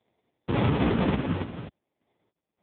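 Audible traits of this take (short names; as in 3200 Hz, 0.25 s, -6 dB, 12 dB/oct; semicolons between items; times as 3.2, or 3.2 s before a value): random-step tremolo 3.5 Hz, depth 95%; aliases and images of a low sample rate 1400 Hz, jitter 0%; AMR-NB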